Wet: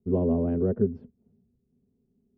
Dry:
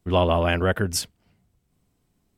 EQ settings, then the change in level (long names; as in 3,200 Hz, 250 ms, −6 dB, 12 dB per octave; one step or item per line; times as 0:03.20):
pair of resonant band-passes 310 Hz, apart 0.72 octaves
high-frequency loss of the air 210 metres
spectral tilt −4.5 dB per octave
0.0 dB